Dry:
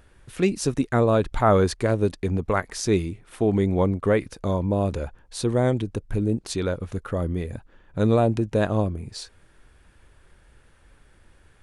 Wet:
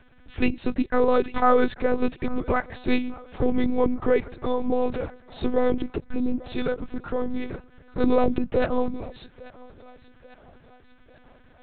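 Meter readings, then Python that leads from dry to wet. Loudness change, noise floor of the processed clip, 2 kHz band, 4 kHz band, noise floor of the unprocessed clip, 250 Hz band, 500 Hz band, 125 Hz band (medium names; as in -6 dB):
-1.5 dB, -54 dBFS, +0.5 dB, -4.5 dB, -57 dBFS, -0.5 dB, -1.0 dB, -13.0 dB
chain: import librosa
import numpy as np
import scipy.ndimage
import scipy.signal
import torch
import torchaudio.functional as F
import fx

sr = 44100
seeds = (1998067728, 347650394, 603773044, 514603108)

y = fx.echo_thinned(x, sr, ms=843, feedback_pct=56, hz=370.0, wet_db=-18.5)
y = fx.lpc_monotone(y, sr, seeds[0], pitch_hz=250.0, order=8)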